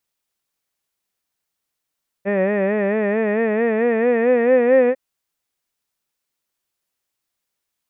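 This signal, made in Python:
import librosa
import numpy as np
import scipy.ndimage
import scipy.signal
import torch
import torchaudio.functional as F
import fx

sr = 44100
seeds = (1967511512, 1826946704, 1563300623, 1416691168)

y = fx.vowel(sr, seeds[0], length_s=2.7, word='head', hz=193.0, glide_st=5.0, vibrato_hz=4.5, vibrato_st=0.9)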